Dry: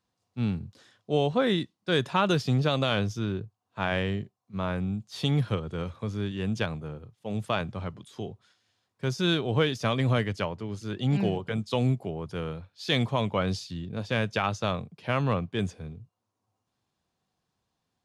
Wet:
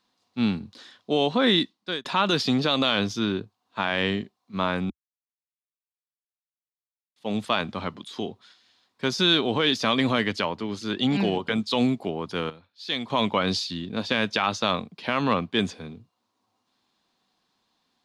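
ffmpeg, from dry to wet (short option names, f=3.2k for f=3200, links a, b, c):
-filter_complex "[0:a]asplit=6[a][b][c][d][e][f];[a]atrim=end=2.05,asetpts=PTS-STARTPTS,afade=t=out:st=1.6:d=0.45[g];[b]atrim=start=2.05:end=4.9,asetpts=PTS-STARTPTS,afade=t=in:d=0.004:c=hsin,afade=t=out:st=2.846:d=0.004:c=hsin[h];[c]atrim=start=4.9:end=7.16,asetpts=PTS-STARTPTS,volume=0[i];[d]atrim=start=7.16:end=12.502,asetpts=PTS-STARTPTS,afade=t=in:d=0.004:c=hsin[j];[e]atrim=start=12.498:end=13.102,asetpts=PTS-STARTPTS,volume=-12dB[k];[f]atrim=start=13.098[l];[g][h][i][j]concat=n=4:v=0:a=1[m];[m][k]acrossfade=d=0.004:c1=hsin:c2=hsin[n];[n][l]acrossfade=d=0.004:c1=hsin:c2=hsin,equalizer=f=71:w=3.2:g=-12,alimiter=limit=-18.5dB:level=0:latency=1:release=59,equalizer=f=125:t=o:w=1:g=-9,equalizer=f=250:t=o:w=1:g=8,equalizer=f=1k:t=o:w=1:g=6,equalizer=f=2k:t=o:w=1:g=4,equalizer=f=4k:t=o:w=1:g=11,volume=2dB"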